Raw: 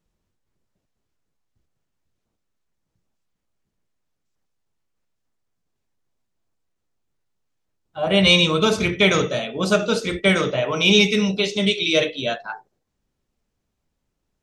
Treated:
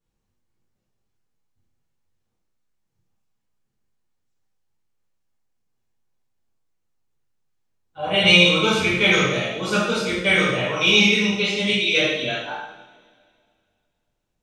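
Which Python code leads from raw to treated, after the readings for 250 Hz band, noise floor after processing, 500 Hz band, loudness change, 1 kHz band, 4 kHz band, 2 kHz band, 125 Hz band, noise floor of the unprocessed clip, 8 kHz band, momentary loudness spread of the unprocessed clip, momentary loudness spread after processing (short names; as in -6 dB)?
-2.0 dB, -76 dBFS, -2.5 dB, +1.0 dB, +0.5 dB, +1.0 dB, +3.5 dB, -1.5 dB, -77 dBFS, -0.5 dB, 12 LU, 12 LU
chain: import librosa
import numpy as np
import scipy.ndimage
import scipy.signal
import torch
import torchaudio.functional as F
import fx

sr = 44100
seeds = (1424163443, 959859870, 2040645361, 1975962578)

y = fx.rev_double_slope(x, sr, seeds[0], early_s=0.8, late_s=2.3, knee_db=-18, drr_db=-9.0)
y = fx.dynamic_eq(y, sr, hz=2200.0, q=1.2, threshold_db=-25.0, ratio=4.0, max_db=5)
y = y * 10.0 ** (-10.5 / 20.0)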